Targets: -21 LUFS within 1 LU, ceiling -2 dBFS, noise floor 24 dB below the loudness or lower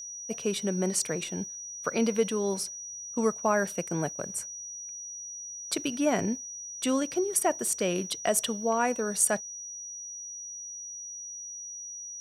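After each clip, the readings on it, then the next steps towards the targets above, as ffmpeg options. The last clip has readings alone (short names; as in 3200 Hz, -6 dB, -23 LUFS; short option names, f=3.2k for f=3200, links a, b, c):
steady tone 5800 Hz; tone level -38 dBFS; loudness -30.0 LUFS; peak -11.0 dBFS; loudness target -21.0 LUFS
-> -af "bandreject=f=5.8k:w=30"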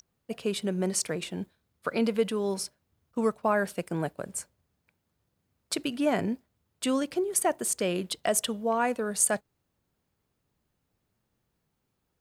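steady tone none; loudness -29.5 LUFS; peak -11.5 dBFS; loudness target -21.0 LUFS
-> -af "volume=8.5dB"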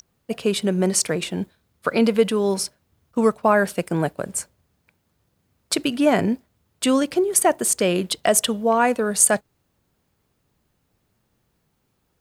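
loudness -21.0 LUFS; peak -3.0 dBFS; noise floor -70 dBFS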